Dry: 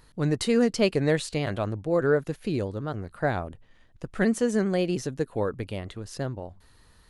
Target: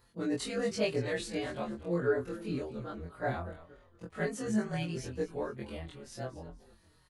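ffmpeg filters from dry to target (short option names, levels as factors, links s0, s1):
-filter_complex "[0:a]afftfilt=real='re':imag='-im':win_size=2048:overlap=0.75,highpass=f=48:p=1,lowshelf=f=70:g=-4,asplit=2[s0][s1];[s1]asplit=3[s2][s3][s4];[s2]adelay=233,afreqshift=-87,volume=0.178[s5];[s3]adelay=466,afreqshift=-174,volume=0.0589[s6];[s4]adelay=699,afreqshift=-261,volume=0.0193[s7];[s5][s6][s7]amix=inputs=3:normalize=0[s8];[s0][s8]amix=inputs=2:normalize=0,asplit=2[s9][s10];[s10]adelay=5.2,afreqshift=-1.8[s11];[s9][s11]amix=inputs=2:normalize=1"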